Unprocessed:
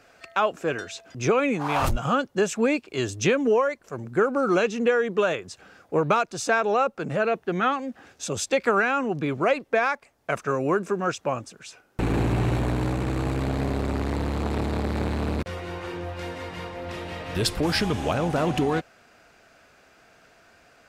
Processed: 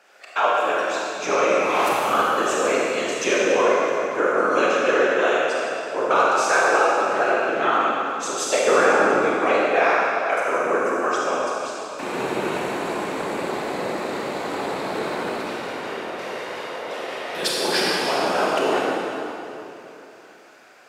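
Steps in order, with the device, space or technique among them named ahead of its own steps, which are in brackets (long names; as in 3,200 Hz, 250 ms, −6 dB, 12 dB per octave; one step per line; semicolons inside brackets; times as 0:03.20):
0:08.60–0:09.17: spectral tilt −3.5 dB per octave
whispering ghost (random phases in short frames; high-pass filter 470 Hz 12 dB per octave; convolution reverb RT60 3.1 s, pre-delay 26 ms, DRR −5.5 dB)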